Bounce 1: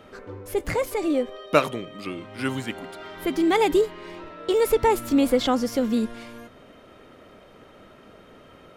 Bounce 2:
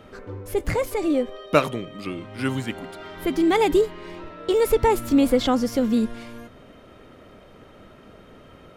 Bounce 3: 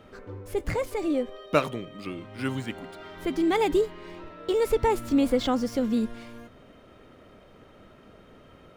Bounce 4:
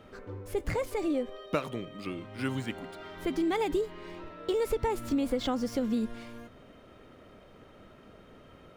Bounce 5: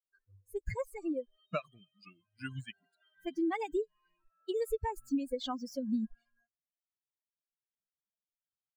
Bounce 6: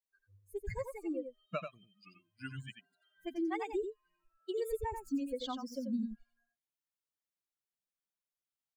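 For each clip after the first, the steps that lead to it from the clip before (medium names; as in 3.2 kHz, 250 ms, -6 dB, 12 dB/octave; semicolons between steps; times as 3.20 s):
bass shelf 180 Hz +7 dB
median filter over 3 samples; trim -4.5 dB
compression 5:1, threshold -24 dBFS, peak gain reduction 8.5 dB; trim -1.5 dB
expander on every frequency bin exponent 3
delay 89 ms -7 dB; trim -3 dB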